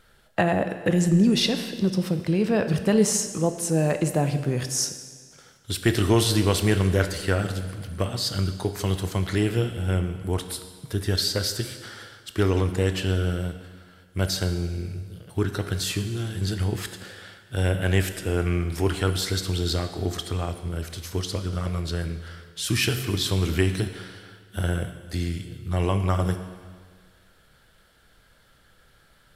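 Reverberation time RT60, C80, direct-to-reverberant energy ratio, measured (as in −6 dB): 1.7 s, 11.0 dB, 8.0 dB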